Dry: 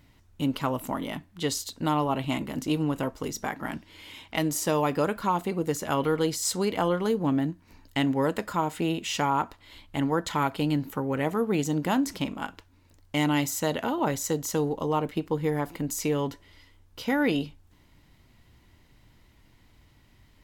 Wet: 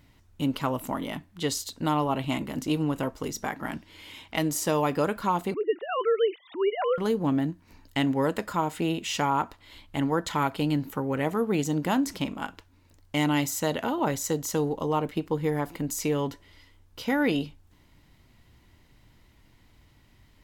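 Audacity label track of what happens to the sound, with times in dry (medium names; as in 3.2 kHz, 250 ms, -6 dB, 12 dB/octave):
5.540000	6.980000	formants replaced by sine waves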